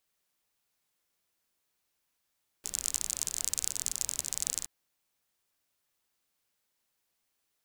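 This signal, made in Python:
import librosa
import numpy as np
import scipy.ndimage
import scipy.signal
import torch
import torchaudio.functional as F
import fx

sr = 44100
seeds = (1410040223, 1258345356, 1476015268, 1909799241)

y = fx.rain(sr, seeds[0], length_s=2.02, drops_per_s=39.0, hz=7200.0, bed_db=-16.5)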